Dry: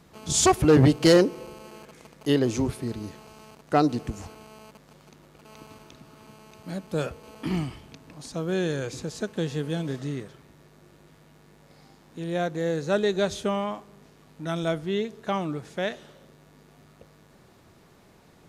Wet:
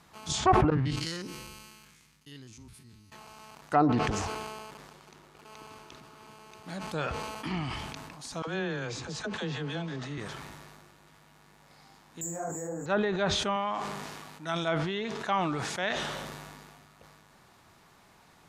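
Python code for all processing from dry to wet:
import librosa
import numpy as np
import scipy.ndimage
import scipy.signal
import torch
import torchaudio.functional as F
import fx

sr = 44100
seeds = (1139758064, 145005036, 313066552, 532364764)

y = fx.chain(x, sr, fx.spec_steps(hold_ms=50),
    fx.tone_stack(knobs='6-0-2'), at=(0.7, 3.12))
y = fx.chain(y, sr, fx.peak_eq(hz=400.0, db=9.0, octaves=0.34),
    fx.doppler_dist(depth_ms=0.76), at=(4.08, 6.7))
y = fx.chain(y, sr, fx.air_absorb(metres=54.0),
    fx.dispersion(late='lows', ms=58.0, hz=500.0), at=(8.42, 10.18))
y = fx.chain(y, sr, fx.lowpass(hz=1000.0, slope=12),
    fx.resample_bad(factor=6, down='filtered', up='zero_stuff'),
    fx.detune_double(cents=50), at=(12.21, 12.86))
y = fx.chain(y, sr, fx.highpass(hz=140.0, slope=6),
    fx.sustainer(db_per_s=47.0), at=(13.56, 15.83))
y = fx.env_lowpass_down(y, sr, base_hz=1200.0, full_db=-17.5)
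y = fx.low_shelf_res(y, sr, hz=660.0, db=-6.5, q=1.5)
y = fx.sustainer(y, sr, db_per_s=28.0)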